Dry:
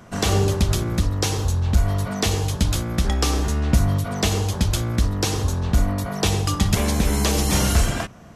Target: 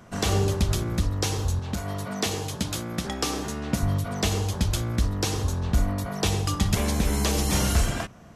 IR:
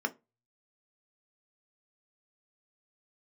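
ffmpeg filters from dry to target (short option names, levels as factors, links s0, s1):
-filter_complex "[0:a]asettb=1/sr,asplit=3[s0][s1][s2];[s0]atrim=end=1.594[s3];[s1]atrim=start=1.59:end=3.83,asetpts=PTS-STARTPTS,afade=t=in:d=0.004:c=qsin,afade=t=out:st=2.236:d=0.004:c=qsin,highpass=140[s4];[s2]atrim=start=3.826[s5];[s3][s4]acrossfade=d=0.004:c1=hsin:c2=qsin[s6];[s6][s5]acrossfade=d=0.004:c1=qsin:c2=hsin,volume=0.631"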